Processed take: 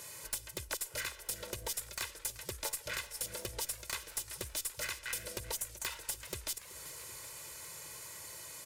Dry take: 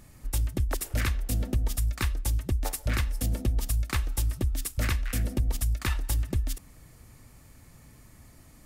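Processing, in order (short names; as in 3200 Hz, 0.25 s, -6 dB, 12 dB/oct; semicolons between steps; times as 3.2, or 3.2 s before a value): weighting filter A; spectral gain 5.56–5.85, 970–5600 Hz -14 dB; high shelf 4600 Hz +10 dB; comb 2 ms, depth 96%; compressor 16:1, threshold -39 dBFS, peak gain reduction 19.5 dB; wrapped overs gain 27 dB; tube stage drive 32 dB, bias 0.4; warbling echo 0.383 s, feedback 72%, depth 73 cents, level -16.5 dB; gain +6 dB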